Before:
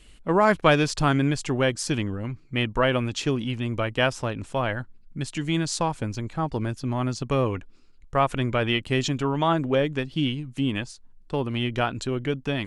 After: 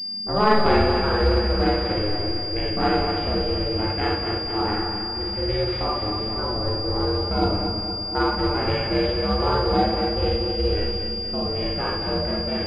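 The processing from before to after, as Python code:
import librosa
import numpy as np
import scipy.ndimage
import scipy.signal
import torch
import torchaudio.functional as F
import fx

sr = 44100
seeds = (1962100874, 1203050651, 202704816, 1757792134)

y = x * np.sin(2.0 * np.pi * 210.0 * np.arange(len(x)) / sr)
y = fx.echo_feedback(y, sr, ms=234, feedback_pct=59, wet_db=-7.0)
y = fx.hpss(y, sr, part='percussive', gain_db=-7)
y = fx.rev_schroeder(y, sr, rt60_s=0.62, comb_ms=32, drr_db=-2.5)
y = fx.pwm(y, sr, carrier_hz=4800.0)
y = y * 10.0 ** (2.0 / 20.0)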